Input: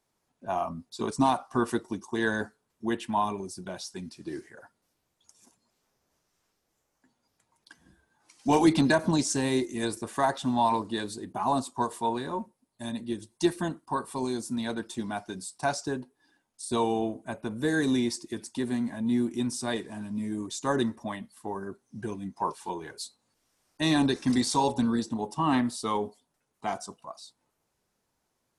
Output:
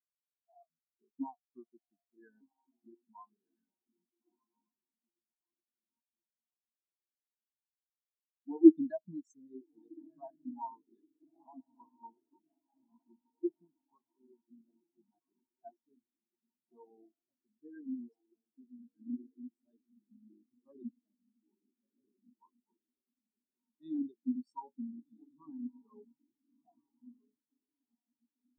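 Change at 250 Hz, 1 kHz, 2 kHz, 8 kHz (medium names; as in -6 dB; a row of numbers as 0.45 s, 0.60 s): -7.5 dB, -23.5 dB, under -35 dB, under -40 dB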